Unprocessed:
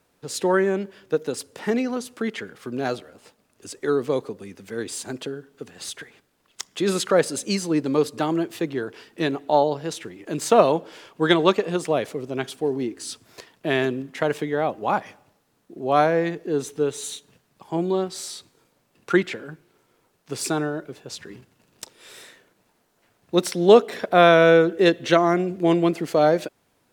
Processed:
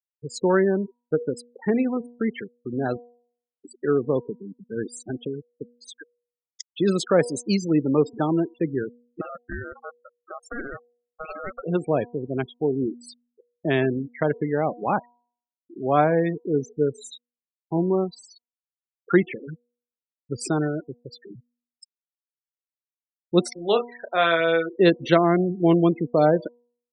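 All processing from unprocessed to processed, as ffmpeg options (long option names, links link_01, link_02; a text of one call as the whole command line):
ffmpeg -i in.wav -filter_complex "[0:a]asettb=1/sr,asplit=3[link_01][link_02][link_03];[link_01]atrim=end=9.214[link_04];[link_02]atrim=start=9.21:end=11.64,asetpts=PTS-STARTPTS,afade=type=in:duration=0.004:curve=qsin,afade=type=out:start_time=2.426:duration=0.004:curve=qsin,acompressor=threshold=-24dB:ratio=5:attack=3.2:release=140:knee=1:detection=peak,aeval=exprs='val(0)*sin(2*PI*950*n/s)':channel_layout=same,aeval=exprs='(tanh(7.08*val(0)+0.5)-tanh(0.5))/7.08':channel_layout=same[link_05];[link_03]atrim=start=11.636[link_06];[link_04][link_05]acrossfade=duration=0.004:curve1=hsin:curve2=qsin[link_07];[link_07][link_06]acrossfade=duration=0.004:curve1=qsin:curve2=hsin,asettb=1/sr,asplit=3[link_08][link_09][link_10];[link_08]atrim=end=23.534[link_11];[link_09]atrim=start=23.53:end=24.79,asetpts=PTS-STARTPTS,afade=type=in:duration=0.004:curve=qsin,afade=type=out:start_time=1.256:duration=0.004:curve=qsin,highpass=frequency=1300:poles=1,asplit=2[link_12][link_13];[link_13]adelay=30,volume=-6dB[link_14];[link_12][link_14]amix=inputs=2:normalize=0,atrim=end_sample=55566[link_15];[link_10]atrim=start=24.786[link_16];[link_11][link_15]acrossfade=duration=0.004:curve1=hsin:curve2=qsin[link_17];[link_17][link_16]acrossfade=duration=0.004:curve1=qsin:curve2=hsin,afftfilt=real='re*gte(hypot(re,im),0.0562)':imag='im*gte(hypot(re,im),0.0562)':win_size=1024:overlap=0.75,lowshelf=frequency=240:gain=9,bandreject=frequency=240.6:width_type=h:width=4,bandreject=frequency=481.2:width_type=h:width=4,bandreject=frequency=721.8:width_type=h:width=4,bandreject=frequency=962.4:width_type=h:width=4,volume=-2dB" out.wav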